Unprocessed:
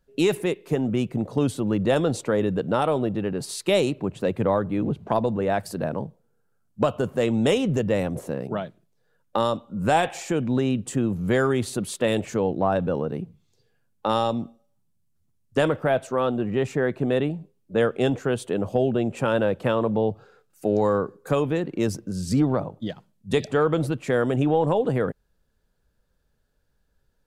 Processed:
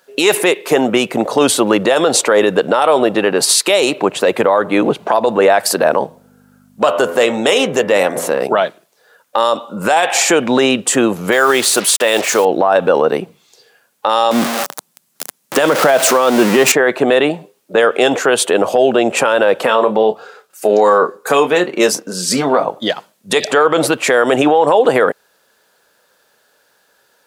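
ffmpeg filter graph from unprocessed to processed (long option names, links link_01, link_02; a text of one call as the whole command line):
ffmpeg -i in.wav -filter_complex "[0:a]asettb=1/sr,asplit=3[link_01][link_02][link_03];[link_01]atrim=end=6.044[link_04];[link_02]atrim=start=6.04:end=8.42,asetpts=PTS-STARTPTS,afade=type=in:duration=0.004:curve=qsin,afade=type=out:start_time=2.376:duration=0.004:curve=qsin,bandreject=frequency=85.11:width_type=h:width=4,bandreject=frequency=170.22:width_type=h:width=4,bandreject=frequency=255.33:width_type=h:width=4,bandreject=frequency=340.44:width_type=h:width=4,bandreject=frequency=425.55:width_type=h:width=4,bandreject=frequency=510.66:width_type=h:width=4,bandreject=frequency=595.77:width_type=h:width=4,bandreject=frequency=680.88:width_type=h:width=4,bandreject=frequency=765.99:width_type=h:width=4,bandreject=frequency=851.1:width_type=h:width=4,bandreject=frequency=936.21:width_type=h:width=4,bandreject=frequency=1021.32:width_type=h:width=4,bandreject=frequency=1106.43:width_type=h:width=4,bandreject=frequency=1191.54:width_type=h:width=4,bandreject=frequency=1276.65:width_type=h:width=4,bandreject=frequency=1361.76:width_type=h:width=4,bandreject=frequency=1446.87:width_type=h:width=4,bandreject=frequency=1531.98:width_type=h:width=4,bandreject=frequency=1617.09:width_type=h:width=4,bandreject=frequency=1702.2:width_type=h:width=4,bandreject=frequency=1787.31:width_type=h:width=4,bandreject=frequency=1872.42:width_type=h:width=4,bandreject=frequency=1957.53:width_type=h:width=4,bandreject=frequency=2042.64:width_type=h:width=4,bandreject=frequency=2127.75:width_type=h:width=4,bandreject=frequency=2212.86:width_type=h:width=4,bandreject=frequency=2297.97:width_type=h:width=4,bandreject=frequency=2383.08:width_type=h:width=4,aeval=exprs='val(0)+0.00562*(sin(2*PI*50*n/s)+sin(2*PI*2*50*n/s)/2+sin(2*PI*3*50*n/s)/3+sin(2*PI*4*50*n/s)/4+sin(2*PI*5*50*n/s)/5)':channel_layout=same,acompressor=threshold=-32dB:ratio=1.5:attack=3.2:release=140:knee=1:detection=peak[link_05];[link_03]atrim=start=8.416[link_06];[link_04][link_05]acrossfade=duration=0.004:curve1=hsin:curve2=qsin[link_07];[link_07][link_06]acrossfade=duration=0.004:curve1=qsin:curve2=hsin,asettb=1/sr,asplit=3[link_08][link_09][link_10];[link_08]atrim=end=11.324[link_11];[link_09]atrim=start=11.32:end=12.45,asetpts=PTS-STARTPTS,afade=type=in:duration=0.004:curve=qsin,afade=type=out:start_time=1.126:duration=0.004:curve=qsin,lowshelf=frequency=300:gain=-5.5,acrusher=bits=6:mix=0:aa=0.5[link_12];[link_10]atrim=start=12.446[link_13];[link_11][link_12]acrossfade=duration=0.004:curve1=hsin:curve2=qsin[link_14];[link_14][link_13]acrossfade=duration=0.004:curve1=qsin:curve2=hsin,asettb=1/sr,asplit=3[link_15][link_16][link_17];[link_15]atrim=end=14.314[link_18];[link_16]atrim=start=14.31:end=16.72,asetpts=PTS-STARTPTS,afade=type=in:duration=0.004:curve=qsin,afade=type=out:start_time=2.406:duration=0.004:curve=qsin,aeval=exprs='val(0)+0.5*0.0266*sgn(val(0))':channel_layout=same,highpass=frequency=150:width=0.5412,highpass=frequency=150:width=1.3066,bass=frequency=250:gain=10,treble=frequency=4000:gain=2[link_19];[link_17]atrim=start=16.716[link_20];[link_18][link_19]acrossfade=duration=0.004:curve1=hsin:curve2=qsin[link_21];[link_21][link_20]acrossfade=duration=0.004:curve1=qsin:curve2=hsin,asettb=1/sr,asplit=3[link_22][link_23][link_24];[link_22]atrim=end=19.654[link_25];[link_23]atrim=start=19.65:end=22.68,asetpts=PTS-STARTPTS,afade=type=in:duration=0.004:curve=qsin,afade=type=out:start_time=3.026:duration=0.004:curve=qsin,flanger=delay=4.1:depth=1.3:regen=-41:speed=1.7:shape=triangular,asplit=2[link_26][link_27];[link_27]adelay=28,volume=-11.5dB[link_28];[link_26][link_28]amix=inputs=2:normalize=0,atrim=end_sample=133623[link_29];[link_24]atrim=start=22.676[link_30];[link_25][link_29]acrossfade=duration=0.004:curve1=hsin:curve2=qsin[link_31];[link_31][link_30]acrossfade=duration=0.004:curve1=qsin:curve2=hsin,highpass=590,acompressor=threshold=-25dB:ratio=6,alimiter=level_in=24.5dB:limit=-1dB:release=50:level=0:latency=1,volume=-1dB" out.wav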